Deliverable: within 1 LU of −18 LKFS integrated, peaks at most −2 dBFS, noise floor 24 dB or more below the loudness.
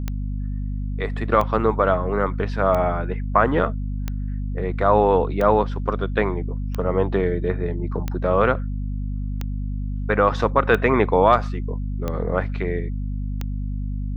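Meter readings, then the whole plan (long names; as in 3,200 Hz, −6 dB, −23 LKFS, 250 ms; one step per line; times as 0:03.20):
number of clicks 11; mains hum 50 Hz; hum harmonics up to 250 Hz; level of the hum −24 dBFS; integrated loudness −22.5 LKFS; sample peak −2.5 dBFS; target loudness −18.0 LKFS
→ click removal
mains-hum notches 50/100/150/200/250 Hz
level +4.5 dB
brickwall limiter −2 dBFS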